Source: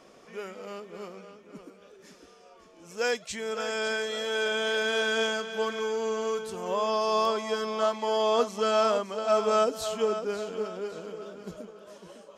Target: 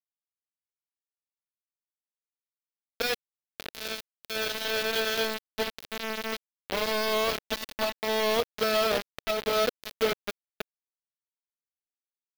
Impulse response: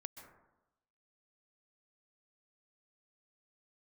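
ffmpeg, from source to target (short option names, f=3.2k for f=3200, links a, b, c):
-filter_complex "[0:a]acrusher=bits=3:mix=0:aa=0.000001,asettb=1/sr,asplit=3[a][b][c];[a]atrim=end=7.494[d];[b]atrim=start=7.49:end=8.03,asetpts=PTS-STARTPTS,afade=t=in:d=0.004:c=qsin,afade=t=out:st=0.536:d=0.004:c=qsin,aecho=1:1:3.5:0.58,atrim=end_sample=23814[e];[c]atrim=start=8.026[f];[d][e]acrossfade=d=0.004:c1=hsin:c2=qsin[g];[g][f]acrossfade=d=0.004:c1=qsin:c2=hsin,alimiter=limit=-19.5dB:level=0:latency=1:release=425,equalizer=f=500:t=o:w=1:g=3,equalizer=f=1k:t=o:w=1:g=-4,equalizer=f=4k:t=o:w=1:g=5,equalizer=f=8k:t=o:w=1:g=-11"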